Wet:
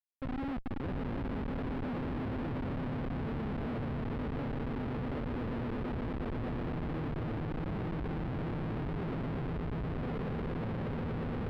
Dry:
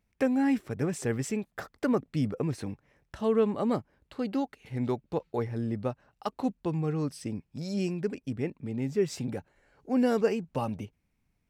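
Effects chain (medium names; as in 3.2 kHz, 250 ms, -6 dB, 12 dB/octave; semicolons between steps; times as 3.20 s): coarse spectral quantiser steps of 30 dB; treble shelf 5.5 kHz -7 dB; reverse; compression 4:1, threshold -37 dBFS, peak gain reduction 14.5 dB; reverse; echo with a slow build-up 119 ms, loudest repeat 8, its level -9.5 dB; reverberation RT60 5.1 s, pre-delay 3 ms, DRR 4 dB; Schmitt trigger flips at -34 dBFS; distance through air 430 m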